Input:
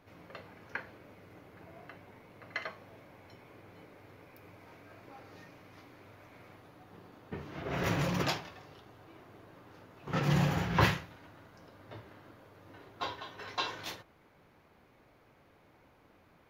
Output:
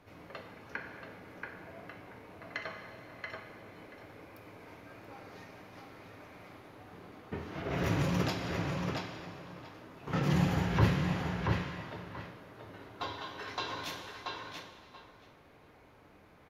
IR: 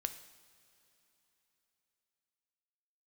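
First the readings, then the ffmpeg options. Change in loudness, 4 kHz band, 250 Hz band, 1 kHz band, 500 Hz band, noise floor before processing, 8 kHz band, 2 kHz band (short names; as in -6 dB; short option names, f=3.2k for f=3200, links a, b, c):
-1.5 dB, -1.0 dB, +3.0 dB, -0.5 dB, +1.0 dB, -64 dBFS, -1.5 dB, -0.5 dB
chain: -filter_complex "[0:a]asplit=2[a][b];[b]adelay=681,lowpass=f=4.1k:p=1,volume=-5dB,asplit=2[c][d];[d]adelay=681,lowpass=f=4.1k:p=1,volume=0.16,asplit=2[e][f];[f]adelay=681,lowpass=f=4.1k:p=1,volume=0.16[g];[a][c][e][g]amix=inputs=4:normalize=0[h];[1:a]atrim=start_sample=2205,afade=t=out:st=0.44:d=0.01,atrim=end_sample=19845,asetrate=25578,aresample=44100[i];[h][i]afir=irnorm=-1:irlink=0,acrossover=split=430[j][k];[k]acompressor=threshold=-37dB:ratio=2.5[l];[j][l]amix=inputs=2:normalize=0"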